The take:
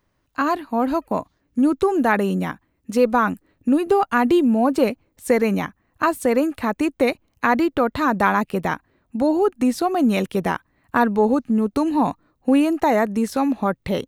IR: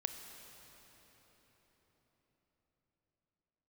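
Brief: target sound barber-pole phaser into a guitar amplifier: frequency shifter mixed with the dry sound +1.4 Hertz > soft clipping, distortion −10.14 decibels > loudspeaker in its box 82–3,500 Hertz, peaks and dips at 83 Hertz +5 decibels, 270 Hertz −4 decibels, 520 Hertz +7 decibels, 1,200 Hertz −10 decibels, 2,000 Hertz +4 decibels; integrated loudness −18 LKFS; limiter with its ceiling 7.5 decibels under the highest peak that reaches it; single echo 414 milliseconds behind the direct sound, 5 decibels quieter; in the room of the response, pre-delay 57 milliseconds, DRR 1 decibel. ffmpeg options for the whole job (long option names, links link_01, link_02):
-filter_complex "[0:a]alimiter=limit=-11.5dB:level=0:latency=1,aecho=1:1:414:0.562,asplit=2[link_01][link_02];[1:a]atrim=start_sample=2205,adelay=57[link_03];[link_02][link_03]afir=irnorm=-1:irlink=0,volume=-1dB[link_04];[link_01][link_04]amix=inputs=2:normalize=0,asplit=2[link_05][link_06];[link_06]afreqshift=1.4[link_07];[link_05][link_07]amix=inputs=2:normalize=1,asoftclip=threshold=-20dB,highpass=82,equalizer=frequency=83:width_type=q:width=4:gain=5,equalizer=frequency=270:width_type=q:width=4:gain=-4,equalizer=frequency=520:width_type=q:width=4:gain=7,equalizer=frequency=1200:width_type=q:width=4:gain=-10,equalizer=frequency=2000:width_type=q:width=4:gain=4,lowpass=frequency=3500:width=0.5412,lowpass=frequency=3500:width=1.3066,volume=7.5dB"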